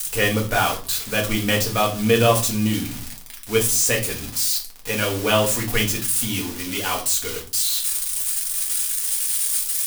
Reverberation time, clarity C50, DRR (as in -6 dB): 0.40 s, 11.5 dB, -2.0 dB